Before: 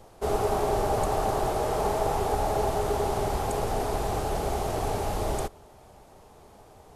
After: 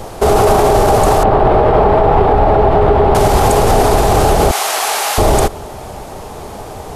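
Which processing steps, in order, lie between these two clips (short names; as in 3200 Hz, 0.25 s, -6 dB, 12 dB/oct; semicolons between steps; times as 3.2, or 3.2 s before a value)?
1.23–3.15 air absorption 440 m; 4.51–5.18 HPF 1400 Hz 12 dB/oct; maximiser +24.5 dB; gain -1 dB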